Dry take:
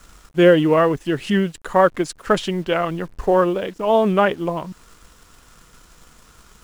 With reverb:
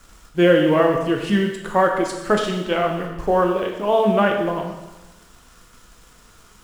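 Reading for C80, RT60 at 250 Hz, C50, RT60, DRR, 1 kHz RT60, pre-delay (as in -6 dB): 7.0 dB, 1.1 s, 4.5 dB, 1.1 s, 1.5 dB, 1.1 s, 8 ms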